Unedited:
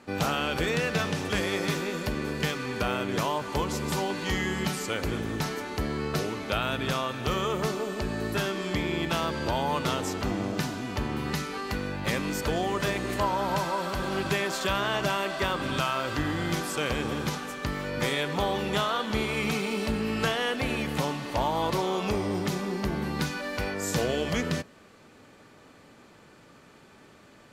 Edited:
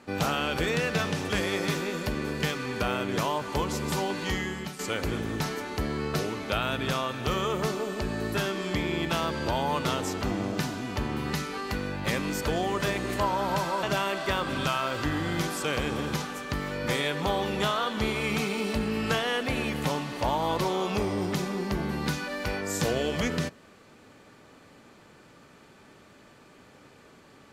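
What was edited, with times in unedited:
0:04.24–0:04.79: fade out, to −12 dB
0:13.83–0:14.96: remove

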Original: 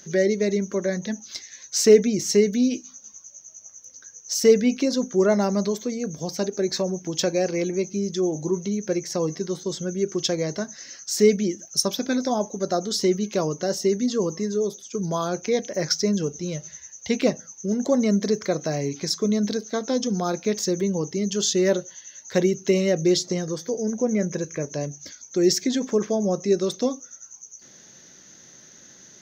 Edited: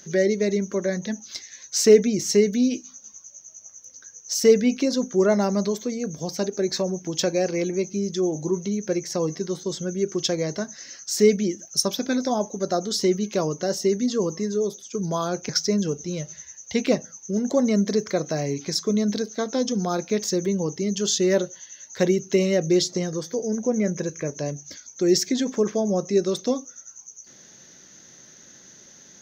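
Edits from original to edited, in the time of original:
0:15.49–0:15.84: remove

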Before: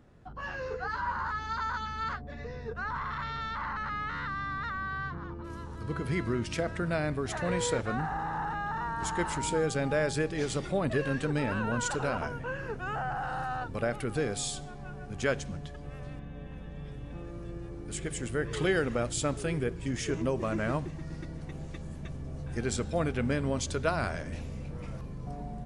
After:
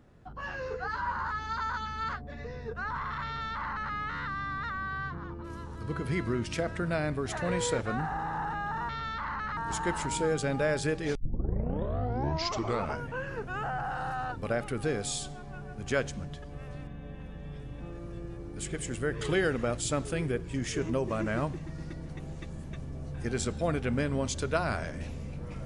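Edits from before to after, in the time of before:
0:03.26–0:03.94: duplicate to 0:08.89
0:10.47: tape start 1.86 s

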